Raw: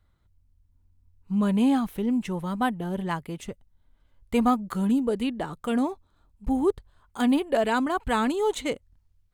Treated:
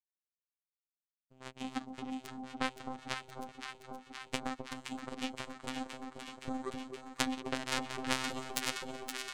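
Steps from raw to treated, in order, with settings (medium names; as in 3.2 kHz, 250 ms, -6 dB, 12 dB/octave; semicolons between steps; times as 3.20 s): steep low-pass 8.4 kHz 96 dB/octave; peaking EQ 820 Hz -8.5 dB 1.2 oct; de-hum 68.89 Hz, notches 4; compression 16:1, threshold -26 dBFS, peak gain reduction 8.5 dB; robot voice 130 Hz; power-law waveshaper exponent 3; echo whose repeats swap between lows and highs 260 ms, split 960 Hz, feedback 87%, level -5.5 dB; trim +10.5 dB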